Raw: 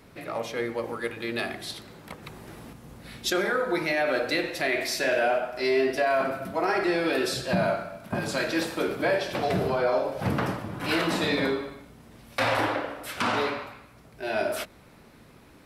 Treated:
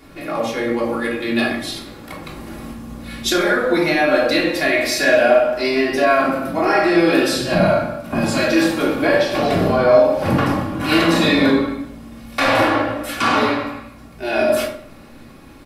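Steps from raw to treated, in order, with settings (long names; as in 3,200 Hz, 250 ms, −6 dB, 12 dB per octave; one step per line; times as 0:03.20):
comb filter 3.6 ms, depth 40%
rectangular room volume 780 cubic metres, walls furnished, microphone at 3.3 metres
level +4.5 dB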